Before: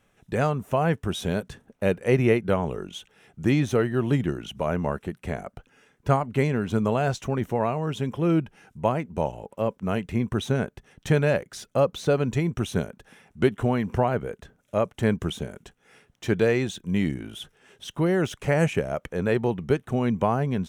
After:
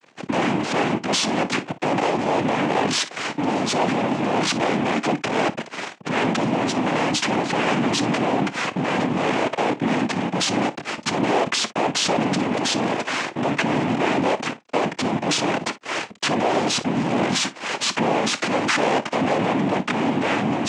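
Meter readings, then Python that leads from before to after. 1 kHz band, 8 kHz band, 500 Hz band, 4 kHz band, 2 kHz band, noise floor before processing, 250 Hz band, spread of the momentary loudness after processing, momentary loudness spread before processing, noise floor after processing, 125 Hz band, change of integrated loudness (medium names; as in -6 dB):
+9.0 dB, +15.0 dB, +1.5 dB, +14.5 dB, +9.0 dB, -67 dBFS, +4.0 dB, 4 LU, 12 LU, -42 dBFS, -4.0 dB, +4.0 dB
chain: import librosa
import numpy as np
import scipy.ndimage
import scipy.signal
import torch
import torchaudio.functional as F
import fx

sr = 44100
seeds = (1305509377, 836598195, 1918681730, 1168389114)

p1 = fx.spec_repair(x, sr, seeds[0], start_s=12.33, length_s=0.66, low_hz=450.0, high_hz=1700.0, source='before')
p2 = fx.over_compress(p1, sr, threshold_db=-32.0, ratio=-1.0)
p3 = fx.fuzz(p2, sr, gain_db=46.0, gate_db=-53.0)
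p4 = fx.noise_vocoder(p3, sr, seeds[1], bands=4)
p5 = fx.bandpass_edges(p4, sr, low_hz=210.0, high_hz=5500.0)
p6 = p5 + fx.room_early_taps(p5, sr, ms=(27, 57), db=(-17.0, -17.5), dry=0)
y = p6 * 10.0 ** (-4.5 / 20.0)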